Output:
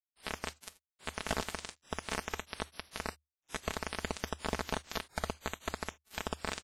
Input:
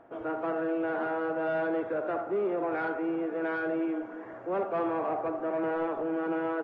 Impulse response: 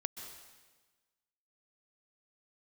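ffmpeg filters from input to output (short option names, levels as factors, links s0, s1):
-af "flanger=delay=5.1:depth=8.6:regen=-60:speed=1.2:shape=triangular,aeval=exprs='val(0)+0.00355*(sin(2*PI*50*n/s)+sin(2*PI*2*50*n/s)/2+sin(2*PI*3*50*n/s)/3+sin(2*PI*4*50*n/s)/4+sin(2*PI*5*50*n/s)/5)':c=same,flanger=delay=2.3:depth=2.7:regen=-15:speed=0.38:shape=triangular,acompressor=threshold=0.00891:ratio=4,tremolo=f=68:d=0.571,lowpass=f=1400:p=1,lowshelf=f=230:t=q:w=3:g=8.5,aecho=1:1:205|410|615|820|1025|1230|1435|1640|1845:0.631|0.379|0.227|0.136|0.0818|0.0491|0.0294|0.0177|0.0106,acrusher=bits=5:mix=0:aa=0.000001,equalizer=f=75:w=3.9:g=12,aecho=1:1:4.6:0.53,volume=3.76" -ar 32000 -c:a wmav2 -b:a 32k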